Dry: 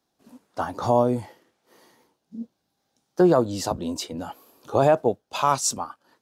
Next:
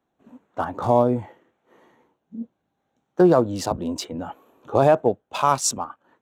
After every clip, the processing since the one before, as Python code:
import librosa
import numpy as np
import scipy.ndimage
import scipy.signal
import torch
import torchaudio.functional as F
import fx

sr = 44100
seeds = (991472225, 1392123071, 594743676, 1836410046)

y = fx.wiener(x, sr, points=9)
y = y * librosa.db_to_amplitude(2.0)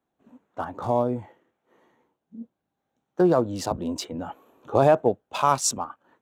y = fx.rider(x, sr, range_db=5, speed_s=2.0)
y = y * librosa.db_to_amplitude(-4.0)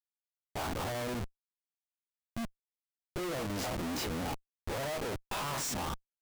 y = fx.spec_dilate(x, sr, span_ms=60)
y = fx.tube_stage(y, sr, drive_db=15.0, bias=0.7)
y = fx.schmitt(y, sr, flips_db=-37.0)
y = y * librosa.db_to_amplitude(-7.0)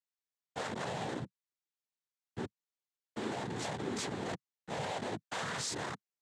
y = fx.noise_vocoder(x, sr, seeds[0], bands=6)
y = y * librosa.db_to_amplitude(-1.5)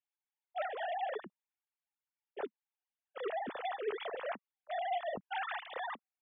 y = fx.sine_speech(x, sr)